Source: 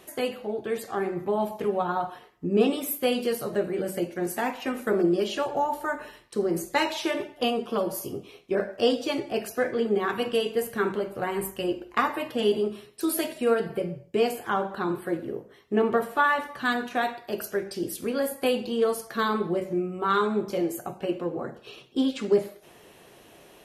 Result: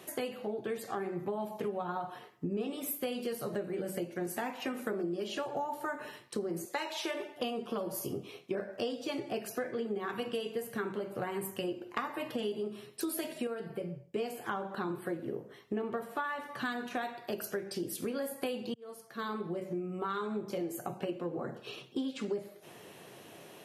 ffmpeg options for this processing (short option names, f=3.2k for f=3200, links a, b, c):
-filter_complex "[0:a]asettb=1/sr,asplit=3[a][b][c];[a]atrim=end=6.654[d];[b]atrim=start=6.65:end=7.36,asetpts=PTS-STARTPTS,afade=t=in:d=0.004:c=qsin,afade=t=out:st=0.706:d=0.004:c=qsin,highpass=380[e];[c]atrim=start=7.356[f];[d][e]acrossfade=d=0.004:c1=hsin:c2=qsin[g];[g][f]acrossfade=d=0.004:c1=qsin:c2=hsin,asplit=4[h][i][j][k];[h]atrim=end=13.472[l];[i]atrim=start=13.468:end=14.162,asetpts=PTS-STARTPTS,volume=-7.5dB[m];[j]atrim=start=14.158:end=18.74,asetpts=PTS-STARTPTS,afade=t=out:st=4.578:d=0.004:c=hsin[n];[k]atrim=start=18.74,asetpts=PTS-STARTPTS,afade=t=in:d=2.57:c=qsin[o];[l][m]acrossfade=d=0.004:c1=hsin:c2=hsin[p];[n][o]concat=n=2:v=0:a=1[q];[p][q]acrossfade=d=0.004:c1=hsin:c2=hsin,highpass=f=100:w=0.5412,highpass=f=100:w=1.3066,equalizer=f=140:t=o:w=1:g=3,acompressor=threshold=-33dB:ratio=6"